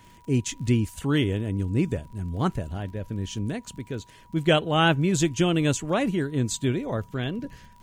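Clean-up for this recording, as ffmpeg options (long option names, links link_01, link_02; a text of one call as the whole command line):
ffmpeg -i in.wav -af "adeclick=threshold=4,bandreject=frequency=970:width=30" out.wav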